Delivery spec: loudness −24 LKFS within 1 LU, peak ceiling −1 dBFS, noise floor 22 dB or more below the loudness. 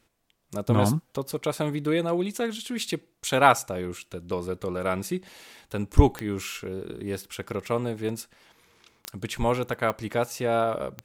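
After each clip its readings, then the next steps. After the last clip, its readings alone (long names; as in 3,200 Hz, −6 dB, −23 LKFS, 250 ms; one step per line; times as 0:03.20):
number of clicks 4; integrated loudness −27.5 LKFS; sample peak −3.5 dBFS; target loudness −24.0 LKFS
→ click removal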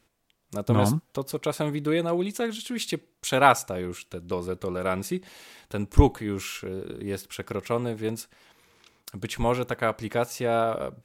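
number of clicks 0; integrated loudness −27.5 LKFS; sample peak −3.5 dBFS; target loudness −24.0 LKFS
→ level +3.5 dB
brickwall limiter −1 dBFS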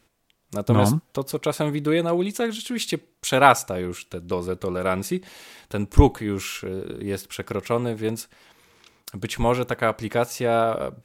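integrated loudness −24.0 LKFS; sample peak −1.0 dBFS; background noise floor −66 dBFS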